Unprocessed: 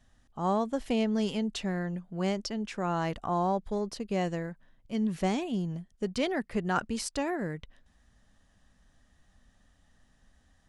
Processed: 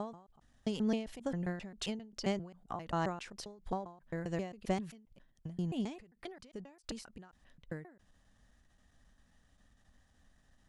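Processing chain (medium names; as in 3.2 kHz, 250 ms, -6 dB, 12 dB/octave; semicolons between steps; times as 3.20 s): slices played last to first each 133 ms, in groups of 5; endings held to a fixed fall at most 110 dB/s; trim -2.5 dB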